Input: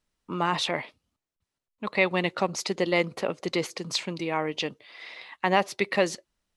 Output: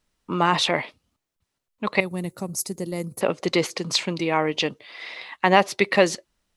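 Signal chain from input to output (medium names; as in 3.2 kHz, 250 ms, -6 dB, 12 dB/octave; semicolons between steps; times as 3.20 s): 2.00–3.21 s: FFT filter 120 Hz 0 dB, 620 Hz -15 dB, 3.2 kHz -23 dB, 11 kHz +13 dB; trim +6 dB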